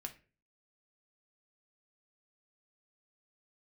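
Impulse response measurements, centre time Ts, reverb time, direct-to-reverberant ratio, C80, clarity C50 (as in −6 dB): 7 ms, 0.35 s, 4.0 dB, 20.0 dB, 14.0 dB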